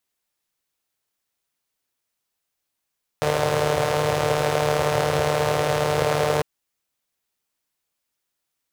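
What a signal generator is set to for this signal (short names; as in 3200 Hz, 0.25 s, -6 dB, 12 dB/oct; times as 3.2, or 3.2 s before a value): four-cylinder engine model, steady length 3.20 s, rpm 4500, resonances 120/510 Hz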